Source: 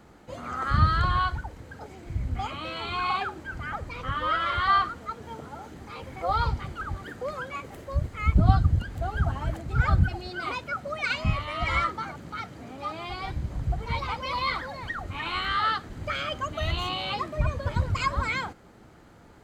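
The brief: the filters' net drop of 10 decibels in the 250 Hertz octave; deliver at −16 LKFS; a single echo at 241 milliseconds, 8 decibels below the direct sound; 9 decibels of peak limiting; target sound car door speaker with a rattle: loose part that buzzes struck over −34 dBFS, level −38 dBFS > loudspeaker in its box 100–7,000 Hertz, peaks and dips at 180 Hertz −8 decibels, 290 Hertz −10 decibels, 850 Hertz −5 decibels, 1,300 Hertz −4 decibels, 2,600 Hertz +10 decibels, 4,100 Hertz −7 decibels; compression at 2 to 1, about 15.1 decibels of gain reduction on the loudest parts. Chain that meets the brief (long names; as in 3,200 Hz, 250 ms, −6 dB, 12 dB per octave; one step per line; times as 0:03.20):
parametric band 250 Hz −8 dB
downward compressor 2 to 1, threshold −41 dBFS
brickwall limiter −29 dBFS
single-tap delay 241 ms −8 dB
loose part that buzzes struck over −34 dBFS, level −38 dBFS
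loudspeaker in its box 100–7,000 Hz, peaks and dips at 180 Hz −8 dB, 290 Hz −10 dB, 850 Hz −5 dB, 1,300 Hz −4 dB, 2,600 Hz +10 dB, 4,100 Hz −7 dB
level +23.5 dB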